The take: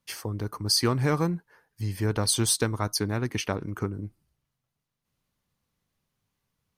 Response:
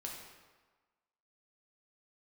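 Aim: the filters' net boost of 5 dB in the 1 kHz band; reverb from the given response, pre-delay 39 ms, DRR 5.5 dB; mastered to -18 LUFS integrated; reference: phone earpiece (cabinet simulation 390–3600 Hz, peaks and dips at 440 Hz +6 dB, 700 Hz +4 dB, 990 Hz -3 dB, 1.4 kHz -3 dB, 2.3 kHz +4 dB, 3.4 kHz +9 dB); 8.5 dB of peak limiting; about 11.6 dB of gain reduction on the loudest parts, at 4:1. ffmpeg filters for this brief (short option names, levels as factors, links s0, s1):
-filter_complex "[0:a]equalizer=f=1000:t=o:g=7.5,acompressor=threshold=0.0224:ratio=4,alimiter=level_in=1.5:limit=0.0631:level=0:latency=1,volume=0.668,asplit=2[s0][s1];[1:a]atrim=start_sample=2205,adelay=39[s2];[s1][s2]afir=irnorm=-1:irlink=0,volume=0.631[s3];[s0][s3]amix=inputs=2:normalize=0,highpass=390,equalizer=f=440:t=q:w=4:g=6,equalizer=f=700:t=q:w=4:g=4,equalizer=f=990:t=q:w=4:g=-3,equalizer=f=1400:t=q:w=4:g=-3,equalizer=f=2300:t=q:w=4:g=4,equalizer=f=3400:t=q:w=4:g=9,lowpass=f=3600:w=0.5412,lowpass=f=3600:w=1.3066,volume=14.1"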